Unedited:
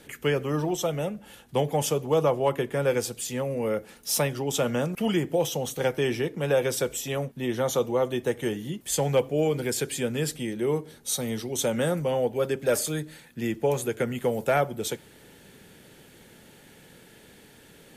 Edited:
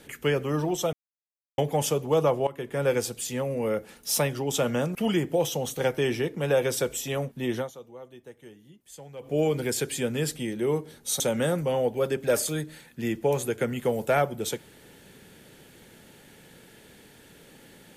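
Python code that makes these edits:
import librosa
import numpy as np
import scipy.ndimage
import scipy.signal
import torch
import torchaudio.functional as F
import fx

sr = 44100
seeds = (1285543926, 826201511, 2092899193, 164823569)

y = fx.edit(x, sr, fx.silence(start_s=0.93, length_s=0.65),
    fx.fade_in_from(start_s=2.47, length_s=0.38, floor_db=-17.5),
    fx.fade_down_up(start_s=7.58, length_s=1.74, db=-19.5, fade_s=0.15, curve='qua'),
    fx.cut(start_s=11.2, length_s=0.39), tone=tone)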